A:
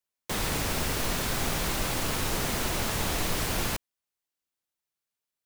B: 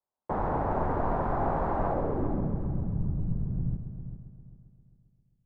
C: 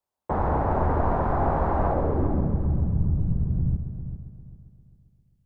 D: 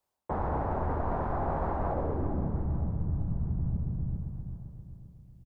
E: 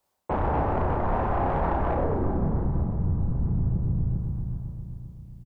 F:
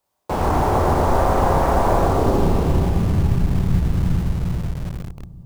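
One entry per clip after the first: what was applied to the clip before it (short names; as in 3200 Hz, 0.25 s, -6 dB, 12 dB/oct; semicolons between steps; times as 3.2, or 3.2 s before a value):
resonant high shelf 2100 Hz -7 dB, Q 1.5; low-pass sweep 840 Hz -> 150 Hz, 1.85–2.57; multi-head echo 0.133 s, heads first and third, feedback 47%, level -10.5 dB
bell 74 Hz +9.5 dB 0.49 oct; gain +4 dB
reverse; compressor 5:1, threshold -33 dBFS, peak gain reduction 14 dB; reverse; feedback echo 0.897 s, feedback 29%, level -17 dB; gain +4.5 dB
soft clip -25.5 dBFS, distortion -17 dB; doubler 33 ms -4.5 dB; gain +6.5 dB
reverb RT60 2.4 s, pre-delay 59 ms, DRR -2.5 dB; in parallel at -5.5 dB: bit-crush 5-bit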